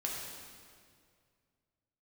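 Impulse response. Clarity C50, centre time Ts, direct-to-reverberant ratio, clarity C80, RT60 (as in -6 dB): 0.5 dB, 97 ms, -3.5 dB, 2.0 dB, 2.1 s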